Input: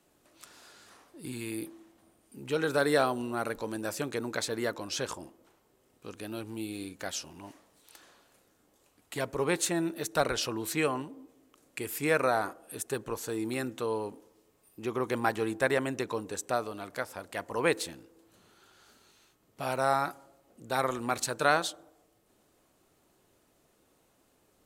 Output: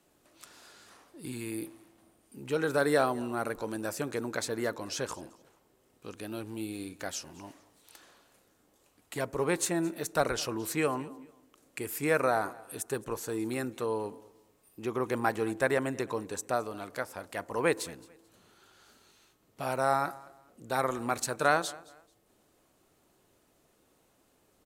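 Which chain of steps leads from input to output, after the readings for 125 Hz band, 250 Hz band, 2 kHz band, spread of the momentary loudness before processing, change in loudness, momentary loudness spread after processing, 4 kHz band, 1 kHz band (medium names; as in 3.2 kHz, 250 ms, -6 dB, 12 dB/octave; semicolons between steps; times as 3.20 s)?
0.0 dB, 0.0 dB, -1.0 dB, 13 LU, -0.5 dB, 17 LU, -3.5 dB, 0.0 dB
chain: dynamic bell 3.4 kHz, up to -5 dB, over -50 dBFS, Q 1.4; on a send: feedback delay 219 ms, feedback 27%, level -22 dB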